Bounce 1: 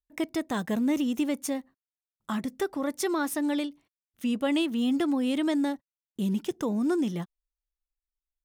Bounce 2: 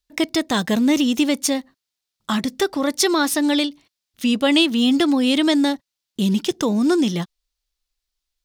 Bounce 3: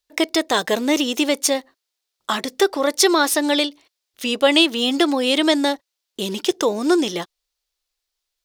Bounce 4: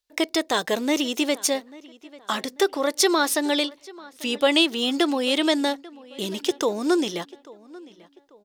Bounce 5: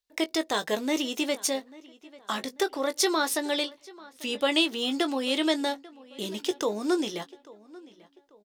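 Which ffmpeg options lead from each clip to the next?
-af "equalizer=f=4.4k:w=0.93:g=11,volume=8.5dB"
-af "lowshelf=f=290:t=q:w=1.5:g=-11.5,volume=2.5dB"
-filter_complex "[0:a]asplit=2[a][b];[b]adelay=841,lowpass=f=3.3k:p=1,volume=-21dB,asplit=2[c][d];[d]adelay=841,lowpass=f=3.3k:p=1,volume=0.39,asplit=2[e][f];[f]adelay=841,lowpass=f=3.3k:p=1,volume=0.39[g];[a][c][e][g]amix=inputs=4:normalize=0,volume=-4dB"
-filter_complex "[0:a]asplit=2[a][b];[b]adelay=19,volume=-10dB[c];[a][c]amix=inputs=2:normalize=0,volume=-5dB"

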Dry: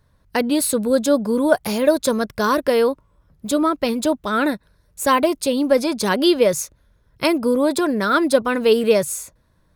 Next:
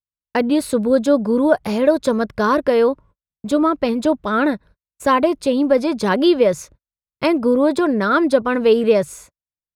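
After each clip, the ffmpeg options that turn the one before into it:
-filter_complex "[0:a]aemphasis=mode=reproduction:type=75kf,agate=range=-47dB:threshold=-44dB:ratio=16:detection=peak,asplit=2[a][b];[b]alimiter=limit=-9dB:level=0:latency=1:release=214,volume=-3dB[c];[a][c]amix=inputs=2:normalize=0,volume=-2dB"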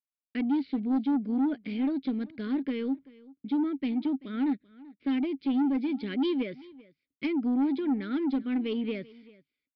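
-filter_complex "[0:a]asplit=3[a][b][c];[a]bandpass=f=270:t=q:w=8,volume=0dB[d];[b]bandpass=f=2.29k:t=q:w=8,volume=-6dB[e];[c]bandpass=f=3.01k:t=q:w=8,volume=-9dB[f];[d][e][f]amix=inputs=3:normalize=0,aresample=11025,asoftclip=type=tanh:threshold=-22dB,aresample=44100,aecho=1:1:386:0.0841"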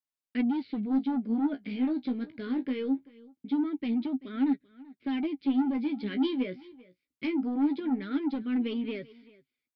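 -af "flanger=delay=7.3:depth=9.3:regen=31:speed=0.22:shape=sinusoidal,volume=3dB"

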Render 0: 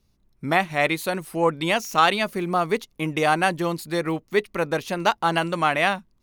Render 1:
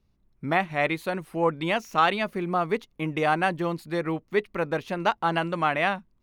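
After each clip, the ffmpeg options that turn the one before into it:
-af "bass=f=250:g=1,treble=f=4k:g=-11,volume=-3dB"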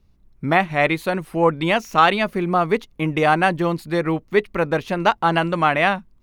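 -af "lowshelf=f=74:g=7,volume=6.5dB"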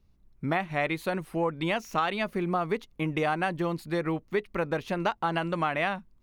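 -af "acompressor=threshold=-18dB:ratio=4,volume=-6dB"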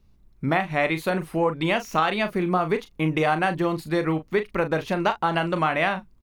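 -filter_complex "[0:a]asplit=2[a][b];[b]adelay=38,volume=-10dB[c];[a][c]amix=inputs=2:normalize=0,volume=5dB"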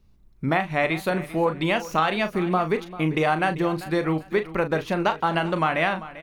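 -af "aecho=1:1:393|786|1179:0.158|0.0428|0.0116"

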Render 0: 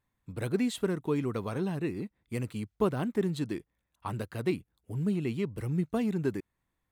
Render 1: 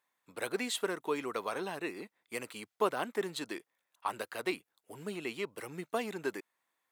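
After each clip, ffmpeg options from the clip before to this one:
-af "highpass=600,volume=4dB"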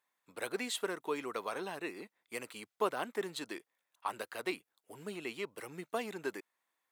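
-af "lowshelf=f=190:g=-4,volume=-2dB"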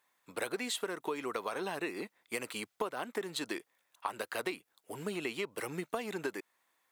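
-af "acompressor=threshold=-40dB:ratio=12,volume=8dB"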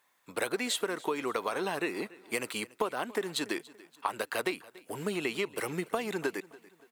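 -af "aecho=1:1:286|572|858:0.0891|0.0374|0.0157,volume=4.5dB"

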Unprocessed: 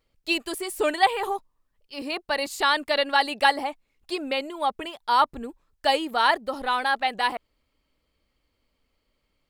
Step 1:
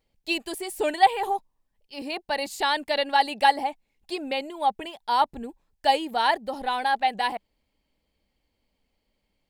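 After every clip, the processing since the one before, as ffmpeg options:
-af "equalizer=f=200:t=o:w=0.33:g=6,equalizer=f=800:t=o:w=0.33:g=6,equalizer=f=1.25k:t=o:w=0.33:g=-10,volume=-2dB"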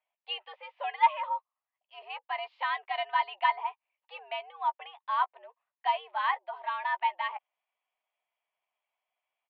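-filter_complex "[0:a]highpass=f=530:t=q:w=0.5412,highpass=f=530:t=q:w=1.307,lowpass=f=2.9k:t=q:w=0.5176,lowpass=f=2.9k:t=q:w=0.7071,lowpass=f=2.9k:t=q:w=1.932,afreqshift=140,asplit=2[a][b];[b]adelay=13,volume=-12dB[c];[a][c]amix=inputs=2:normalize=0,volume=-6dB"

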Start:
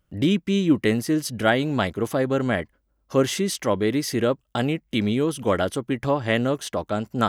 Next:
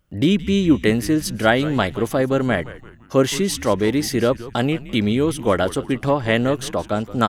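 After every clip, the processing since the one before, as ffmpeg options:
-filter_complex "[0:a]asplit=5[a][b][c][d][e];[b]adelay=170,afreqshift=-120,volume=-16dB[f];[c]adelay=340,afreqshift=-240,volume=-23.5dB[g];[d]adelay=510,afreqshift=-360,volume=-31.1dB[h];[e]adelay=680,afreqshift=-480,volume=-38.6dB[i];[a][f][g][h][i]amix=inputs=5:normalize=0,volume=3.5dB"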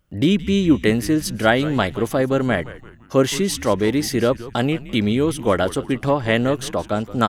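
-af anull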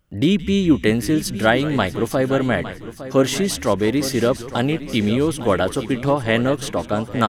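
-af "aecho=1:1:858|1716|2574|3432:0.211|0.0782|0.0289|0.0107"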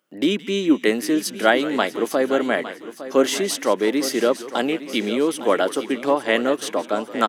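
-af "highpass=f=260:w=0.5412,highpass=f=260:w=1.3066"

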